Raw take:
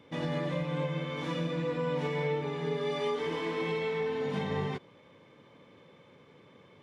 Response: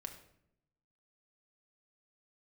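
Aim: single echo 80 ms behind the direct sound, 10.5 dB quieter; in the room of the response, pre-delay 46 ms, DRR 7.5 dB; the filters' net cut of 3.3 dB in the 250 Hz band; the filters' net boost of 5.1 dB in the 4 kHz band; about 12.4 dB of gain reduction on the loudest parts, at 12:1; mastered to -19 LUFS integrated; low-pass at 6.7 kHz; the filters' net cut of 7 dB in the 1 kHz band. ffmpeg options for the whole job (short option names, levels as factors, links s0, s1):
-filter_complex "[0:a]lowpass=6700,equalizer=f=250:t=o:g=-5,equalizer=f=1000:t=o:g=-8.5,equalizer=f=4000:t=o:g=7.5,acompressor=threshold=0.00708:ratio=12,aecho=1:1:80:0.299,asplit=2[s0][s1];[1:a]atrim=start_sample=2205,adelay=46[s2];[s1][s2]afir=irnorm=-1:irlink=0,volume=0.631[s3];[s0][s3]amix=inputs=2:normalize=0,volume=21.1"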